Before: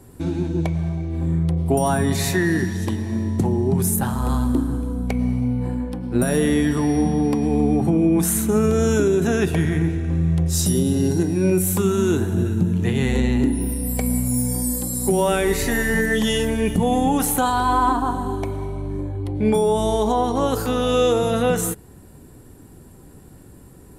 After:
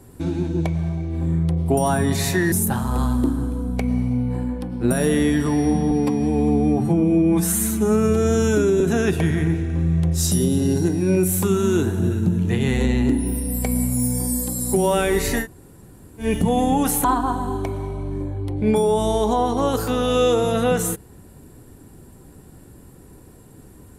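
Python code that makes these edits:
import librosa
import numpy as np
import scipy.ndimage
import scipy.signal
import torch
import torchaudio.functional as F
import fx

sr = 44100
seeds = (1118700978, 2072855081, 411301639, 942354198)

y = fx.edit(x, sr, fx.cut(start_s=2.52, length_s=1.31),
    fx.stretch_span(start_s=7.22, length_s=1.93, factor=1.5),
    fx.room_tone_fill(start_s=15.77, length_s=0.8, crossfade_s=0.1),
    fx.cut(start_s=17.39, length_s=0.44), tone=tone)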